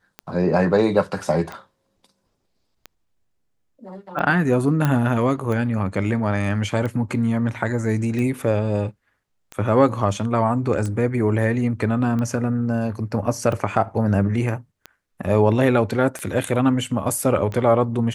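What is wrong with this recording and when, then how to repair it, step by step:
tick 45 rpm -17 dBFS
4.85 s: pop -8 dBFS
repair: de-click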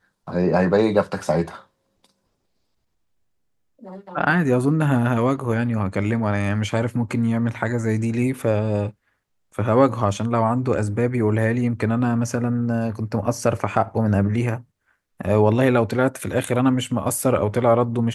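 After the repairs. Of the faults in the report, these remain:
nothing left

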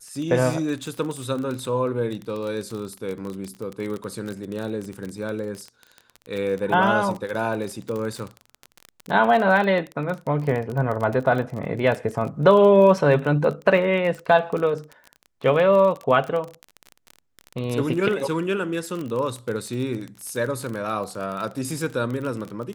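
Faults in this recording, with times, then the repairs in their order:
crackle 29 per s -27 dBFS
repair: de-click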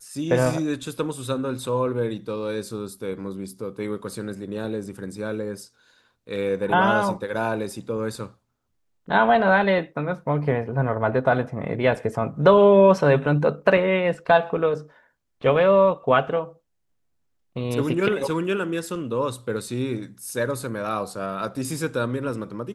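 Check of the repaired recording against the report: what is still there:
nothing left

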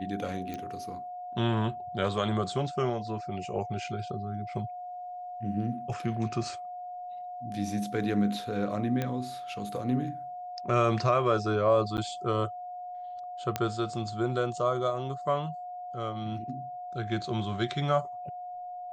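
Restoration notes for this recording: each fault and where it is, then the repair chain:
whine 720 Hz -37 dBFS
0.54 s: pop -23 dBFS
9.02 s: pop -17 dBFS
11.97–11.98 s: dropout 9.3 ms
13.56 s: pop -13 dBFS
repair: de-click; band-stop 720 Hz, Q 30; interpolate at 11.97 s, 9.3 ms

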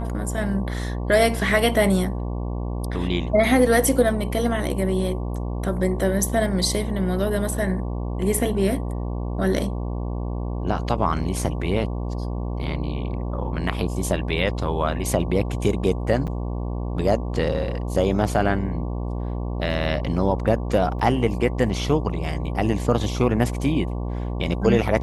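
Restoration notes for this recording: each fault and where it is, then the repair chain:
buzz 60 Hz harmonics 19 -27 dBFS
16.27–16.28 s: dropout 7.9 ms
20.99–21.00 s: dropout 5.1 ms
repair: de-hum 60 Hz, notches 19; interpolate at 16.27 s, 7.9 ms; interpolate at 20.99 s, 5.1 ms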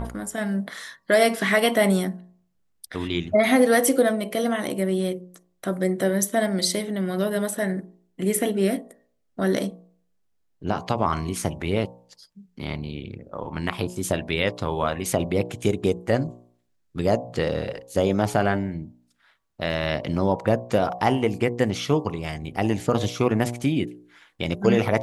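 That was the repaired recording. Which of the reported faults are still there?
nothing left

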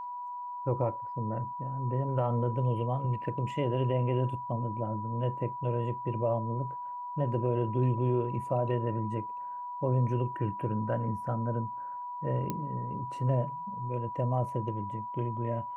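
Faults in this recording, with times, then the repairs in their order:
whine 980 Hz -36 dBFS
12.50 s: pop -18 dBFS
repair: de-click; band-stop 980 Hz, Q 30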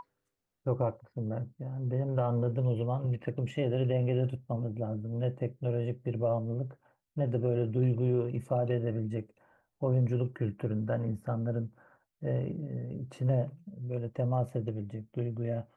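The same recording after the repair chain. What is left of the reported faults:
nothing left

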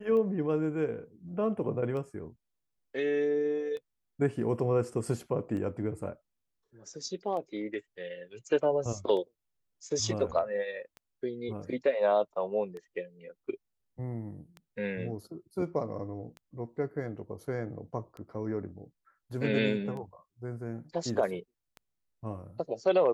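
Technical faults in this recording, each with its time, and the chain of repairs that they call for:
tick 33 1/3 rpm -30 dBFS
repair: de-click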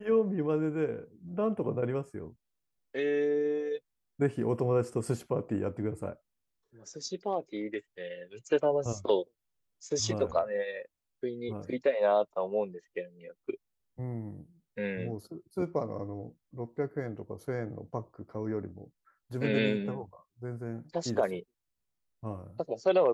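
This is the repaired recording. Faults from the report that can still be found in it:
nothing left

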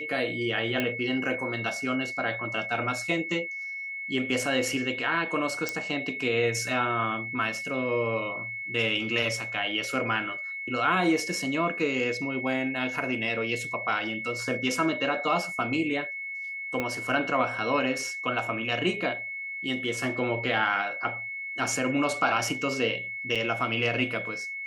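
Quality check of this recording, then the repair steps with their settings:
whine 2.2 kHz -33 dBFS
0.80 s: pop -14 dBFS
5.69 s: pop
16.80 s: pop -15 dBFS
23.35–23.36 s: dropout 6.5 ms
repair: de-click; band-stop 2.2 kHz, Q 30; interpolate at 23.35 s, 6.5 ms

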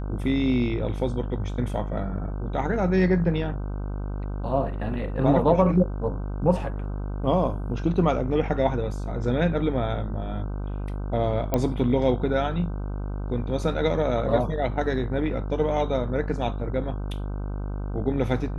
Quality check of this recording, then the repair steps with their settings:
buzz 50 Hz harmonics 31 -30 dBFS
11.54 s: pop -10 dBFS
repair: de-click; de-hum 50 Hz, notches 31

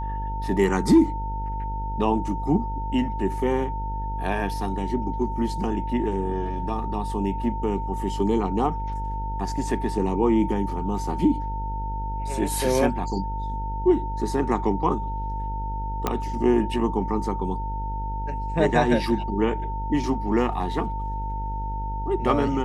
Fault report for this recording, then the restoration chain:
buzz 50 Hz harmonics 20 -30 dBFS
whine 900 Hz -31 dBFS
16.07 s: pop -9 dBFS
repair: de-click; band-stop 900 Hz, Q 30; de-hum 50 Hz, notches 20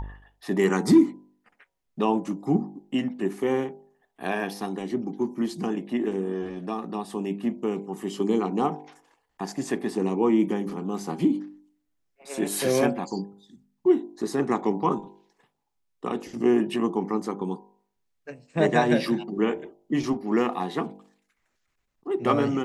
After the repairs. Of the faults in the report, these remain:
nothing left

